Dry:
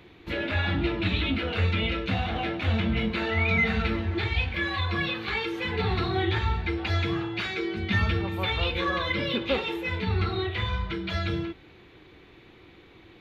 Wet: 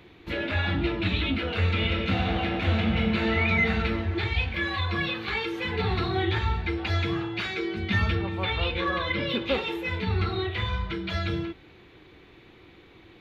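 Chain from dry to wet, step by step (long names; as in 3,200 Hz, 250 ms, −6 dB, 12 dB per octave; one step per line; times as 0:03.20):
0:01.57–0:03.40: thrown reverb, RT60 2.8 s, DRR 2.5 dB
0:08.15–0:09.29: low-pass filter 4,600 Hz 12 dB per octave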